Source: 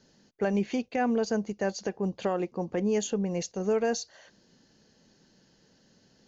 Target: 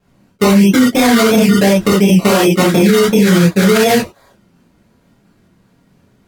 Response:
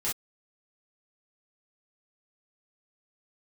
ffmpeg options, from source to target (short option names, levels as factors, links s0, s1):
-filter_complex "[0:a]afwtdn=0.02,bass=f=250:g=6,treble=f=4000:g=-3,acrusher=samples=21:mix=1:aa=0.000001:lfo=1:lforange=12.6:lforate=2.8,flanger=delay=6.3:depth=6.1:regen=-57:speed=1.2:shape=triangular[s0];[1:a]atrim=start_sample=2205,asetrate=33957,aresample=44100[s1];[s0][s1]afir=irnorm=-1:irlink=0,alimiter=level_in=11.2:limit=0.891:release=50:level=0:latency=1,volume=0.891"